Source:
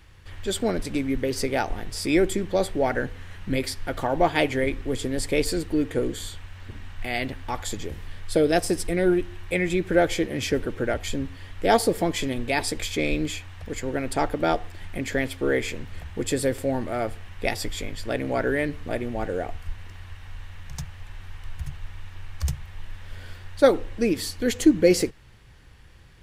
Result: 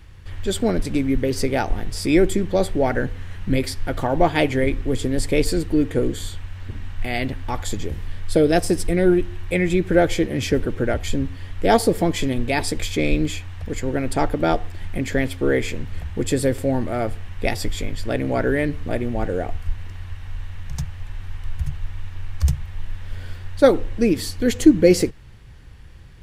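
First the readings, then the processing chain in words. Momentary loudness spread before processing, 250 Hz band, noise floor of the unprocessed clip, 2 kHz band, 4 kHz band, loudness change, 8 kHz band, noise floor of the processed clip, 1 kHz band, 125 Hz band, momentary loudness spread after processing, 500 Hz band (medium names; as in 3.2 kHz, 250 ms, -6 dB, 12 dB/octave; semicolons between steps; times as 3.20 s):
21 LU, +5.0 dB, -48 dBFS, +1.5 dB, +1.5 dB, +3.5 dB, +1.5 dB, -40 dBFS, +2.5 dB, +7.5 dB, 17 LU, +3.5 dB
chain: bass shelf 290 Hz +7 dB; trim +1.5 dB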